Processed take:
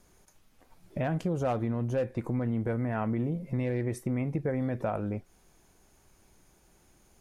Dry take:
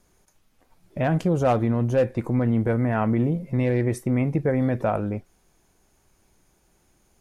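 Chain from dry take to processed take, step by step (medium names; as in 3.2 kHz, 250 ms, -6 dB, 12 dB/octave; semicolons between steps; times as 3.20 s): compression 2:1, threshold -35 dBFS, peak gain reduction 10.5 dB; trim +1 dB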